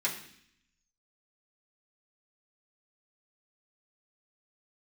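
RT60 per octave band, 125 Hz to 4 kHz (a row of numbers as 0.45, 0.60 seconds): 0.95, 0.95, 0.65, 0.65, 0.80, 0.80 seconds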